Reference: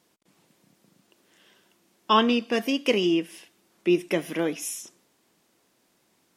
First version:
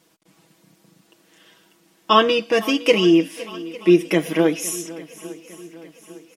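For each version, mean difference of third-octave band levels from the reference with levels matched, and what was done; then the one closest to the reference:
3.0 dB: comb filter 6.2 ms, depth 75%
on a send: feedback echo with a long and a short gap by turns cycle 854 ms, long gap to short 1.5 to 1, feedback 47%, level −18.5 dB
on the sum: level +4.5 dB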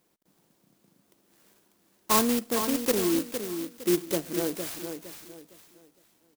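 11.0 dB: on a send: repeating echo 460 ms, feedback 31%, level −8 dB
on the sum: converter with an unsteady clock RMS 0.13 ms
level −3 dB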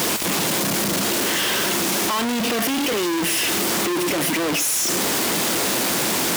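16.0 dB: sign of each sample alone
high-pass filter 120 Hz 6 dB per octave
level +7.5 dB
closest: first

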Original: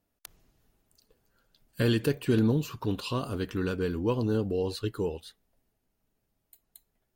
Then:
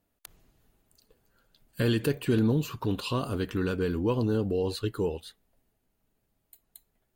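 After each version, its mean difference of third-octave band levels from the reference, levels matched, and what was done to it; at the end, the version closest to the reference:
1.0 dB: parametric band 5,500 Hz −4.5 dB 0.32 octaves
in parallel at +0.5 dB: brickwall limiter −22.5 dBFS, peak gain reduction 7.5 dB
on the sum: level −4 dB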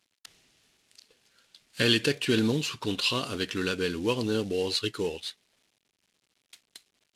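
6.5 dB: variable-slope delta modulation 64 kbit/s
meter weighting curve D
level +1 dB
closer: first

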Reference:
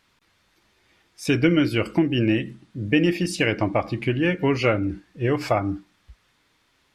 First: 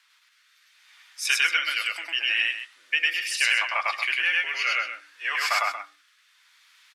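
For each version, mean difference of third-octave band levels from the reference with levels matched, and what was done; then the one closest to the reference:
17.0 dB: high-pass filter 1,200 Hz 24 dB per octave
rotating-speaker cabinet horn 0.7 Hz
on a send: loudspeakers that aren't time-aligned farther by 35 metres 0 dB, 79 metres −10 dB
on the sum: level +7 dB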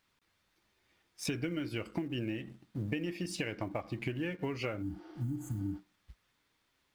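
5.0 dB: mu-law and A-law mismatch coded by A
healed spectral selection 0:04.85–0:05.73, 310–6,200 Hz after
downward compressor 10 to 1, threshold −30 dBFS, peak gain reduction 16.5 dB
level −2.5 dB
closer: second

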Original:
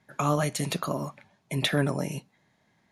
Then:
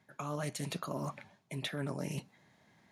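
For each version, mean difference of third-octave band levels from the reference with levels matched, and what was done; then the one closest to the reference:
4.0 dB: reversed playback
downward compressor 5 to 1, threshold −38 dBFS, peak gain reduction 17 dB
reversed playback
high-pass filter 56 Hz
highs frequency-modulated by the lows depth 0.14 ms
level +2 dB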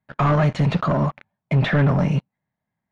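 7.5 dB: parametric band 370 Hz −9 dB 1 octave
leveller curve on the samples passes 5
head-to-tape spacing loss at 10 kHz 40 dB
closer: first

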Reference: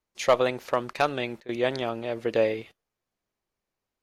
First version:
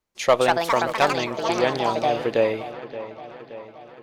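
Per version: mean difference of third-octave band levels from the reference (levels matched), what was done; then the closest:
6.0 dB: delay with pitch and tempo change per echo 267 ms, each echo +5 semitones, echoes 2
on a send: delay with a low-pass on its return 574 ms, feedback 59%, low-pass 3,100 Hz, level −14 dB
on the sum: level +3 dB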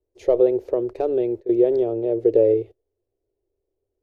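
12.0 dB: in parallel at +3 dB: brickwall limiter −20.5 dBFS, peak gain reduction 11.5 dB
on the sum: drawn EQ curve 110 Hz 0 dB, 160 Hz −29 dB, 390 Hz +8 dB, 1,200 Hz −26 dB
level +2.5 dB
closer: first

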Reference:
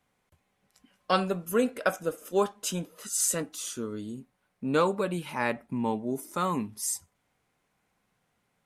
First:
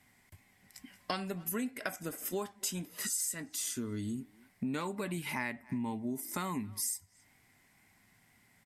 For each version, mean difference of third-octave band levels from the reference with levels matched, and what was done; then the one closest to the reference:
5.5 dB: thirty-one-band graphic EQ 100 Hz +9 dB, 250 Hz +5 dB, 500 Hz −12 dB, 1,250 Hz −6 dB, 2,000 Hz +11 dB, 5,000 Hz +6 dB, 8,000 Hz +7 dB, 12,500 Hz +10 dB
tape wow and flutter 28 cents
far-end echo of a speakerphone 270 ms, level −27 dB
downward compressor 6 to 1, threshold −40 dBFS, peak gain reduction 21 dB
level +5.5 dB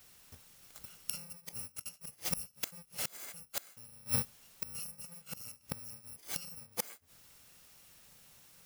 16.0 dB: samples in bit-reversed order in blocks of 128 samples
dynamic equaliser 3,500 Hz, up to −6 dB, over −50 dBFS, Q 3
bit-depth reduction 12 bits, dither triangular
gate with flip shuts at −29 dBFS, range −30 dB
level +10.5 dB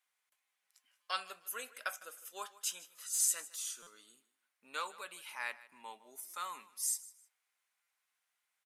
10.5 dB: high-pass filter 1,400 Hz 12 dB per octave
high-shelf EQ 6,900 Hz +5 dB
repeating echo 155 ms, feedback 25%, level −19 dB
buffer that repeats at 0:01.02/0:03.14/0:03.82/0:06.29/0:07.82, samples 256, times 7
level −6.5 dB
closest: first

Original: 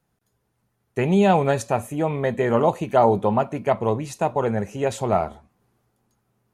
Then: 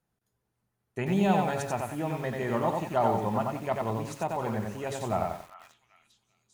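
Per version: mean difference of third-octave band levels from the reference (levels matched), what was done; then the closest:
7.5 dB: hum removal 138 Hz, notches 10
dynamic equaliser 470 Hz, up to −7 dB, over −35 dBFS, Q 3.1
on a send: echo through a band-pass that steps 395 ms, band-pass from 1,500 Hz, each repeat 0.7 octaves, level −11.5 dB
on the sum: feedback echo at a low word length 91 ms, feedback 35%, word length 7 bits, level −3 dB
level −8 dB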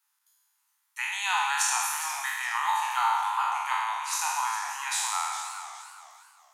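24.5 dB: peak hold with a decay on every bin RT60 1.77 s
Butterworth high-pass 850 Hz 96 dB per octave
high-shelf EQ 3,000 Hz +10.5 dB
feedback echo with a swinging delay time 414 ms, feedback 31%, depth 160 cents, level −11.5 dB
level −5.5 dB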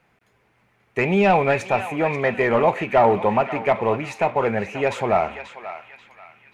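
5.0 dB: mu-law and A-law mismatch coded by mu
parametric band 2,300 Hz +13 dB 0.74 octaves
mid-hump overdrive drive 11 dB, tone 1,100 Hz, clips at −5 dBFS
on a send: feedback echo with a band-pass in the loop 535 ms, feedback 44%, band-pass 2,400 Hz, level −8 dB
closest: third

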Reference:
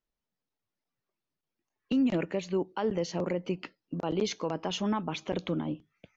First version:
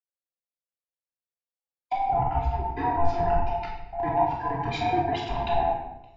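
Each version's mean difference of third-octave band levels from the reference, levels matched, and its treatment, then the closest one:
10.0 dB: neighbouring bands swapped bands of 500 Hz
treble cut that deepens with the level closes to 770 Hz, closed at −24.5 dBFS
rectangular room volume 1,100 cubic metres, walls mixed, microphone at 3.1 metres
multiband upward and downward expander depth 70%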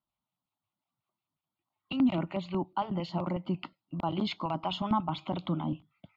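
4.0 dB: high-pass filter 99 Hz
auto-filter notch square 5.5 Hz 230–2,500 Hz
low-pass filter 3,600 Hz 6 dB per octave
phaser with its sweep stopped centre 1,700 Hz, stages 6
level +6 dB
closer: second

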